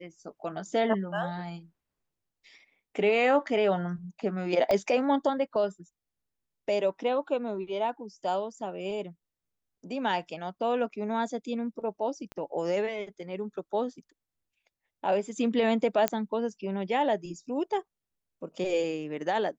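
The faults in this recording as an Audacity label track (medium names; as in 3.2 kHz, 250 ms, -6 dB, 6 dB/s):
4.710000	4.710000	pop -15 dBFS
12.320000	12.320000	pop -26 dBFS
16.080000	16.080000	pop -10 dBFS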